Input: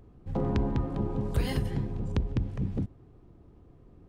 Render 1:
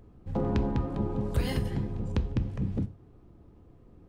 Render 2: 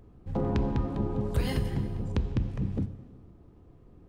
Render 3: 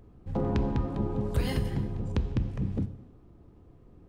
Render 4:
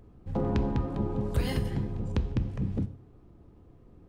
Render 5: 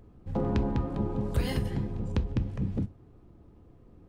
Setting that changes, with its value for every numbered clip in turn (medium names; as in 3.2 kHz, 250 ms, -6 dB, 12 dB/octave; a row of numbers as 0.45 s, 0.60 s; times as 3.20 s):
gated-style reverb, gate: 130 ms, 520 ms, 350 ms, 200 ms, 90 ms